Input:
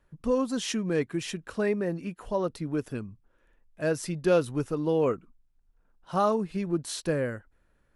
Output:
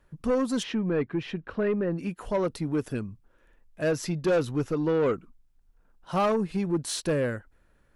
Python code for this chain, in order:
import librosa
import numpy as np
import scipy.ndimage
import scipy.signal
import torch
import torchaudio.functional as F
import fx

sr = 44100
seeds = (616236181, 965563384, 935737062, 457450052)

y = fx.peak_eq(x, sr, hz=9200.0, db=-12.5, octaves=0.32, at=(3.91, 5.14))
y = 10.0 ** (-23.0 / 20.0) * np.tanh(y / 10.0 ** (-23.0 / 20.0))
y = fx.air_absorb(y, sr, metres=340.0, at=(0.62, 1.97), fade=0.02)
y = y * librosa.db_to_amplitude(4.0)